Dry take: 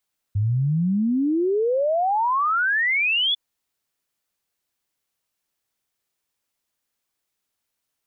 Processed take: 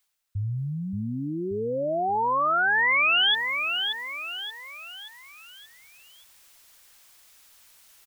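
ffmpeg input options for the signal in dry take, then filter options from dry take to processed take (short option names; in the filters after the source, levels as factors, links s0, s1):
-f lavfi -i "aevalsrc='0.126*clip(min(t,3-t)/0.01,0,1)*sin(2*PI*98*3/log(3500/98)*(exp(log(3500/98)*t/3)-1))':d=3:s=44100"
-af "equalizer=f=240:w=0.43:g=-11,areverse,acompressor=mode=upward:threshold=0.0141:ratio=2.5,areverse,aecho=1:1:578|1156|1734|2312|2890:0.501|0.221|0.097|0.0427|0.0188"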